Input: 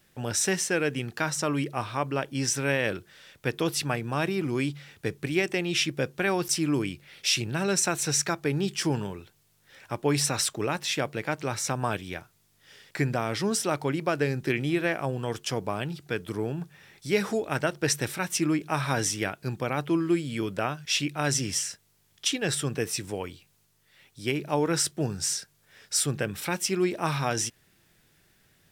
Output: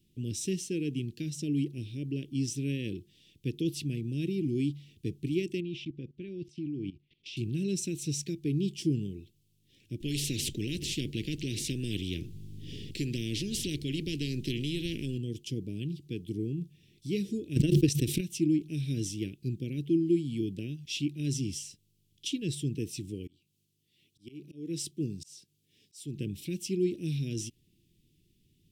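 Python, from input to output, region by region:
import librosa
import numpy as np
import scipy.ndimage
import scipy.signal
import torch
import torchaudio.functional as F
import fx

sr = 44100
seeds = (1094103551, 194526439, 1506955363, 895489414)

y = fx.chain(x, sr, fx.lowpass(hz=3200.0, slope=12),
    fx.level_steps(step_db=17), at=(5.6, 7.37))
y = fx.chain(y, sr, fx.tilt_eq(slope=-3.0),
    fx.spectral_comp(ratio=4.0), at=(10.0, 15.18))
y = fx.chain(y, sr, fx.transient(attack_db=8, sustain_db=-9),
    fx.pre_swell(db_per_s=32.0), at=(17.56, 18.21))
y = fx.chain(y, sr, fx.highpass(hz=180.0, slope=6),
    fx.auto_swell(attack_ms=307.0), at=(23.27, 26.19))
y = scipy.signal.sosfilt(scipy.signal.ellip(3, 1.0, 60, [340.0, 2900.0], 'bandstop', fs=sr, output='sos'), y)
y = fx.high_shelf(y, sr, hz=2300.0, db=-11.5)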